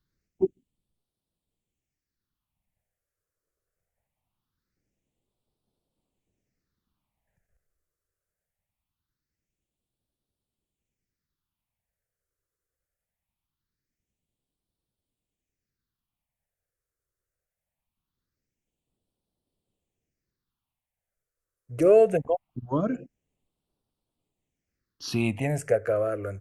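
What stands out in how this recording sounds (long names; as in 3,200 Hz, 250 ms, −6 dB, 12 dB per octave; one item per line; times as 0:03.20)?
phaser sweep stages 6, 0.22 Hz, lowest notch 220–1,900 Hz
Opus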